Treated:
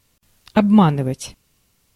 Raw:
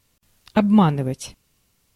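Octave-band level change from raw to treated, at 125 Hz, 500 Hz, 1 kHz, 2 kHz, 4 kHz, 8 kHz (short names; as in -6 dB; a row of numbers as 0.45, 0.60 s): +2.5, +2.5, +2.5, +2.5, +2.5, +2.5 dB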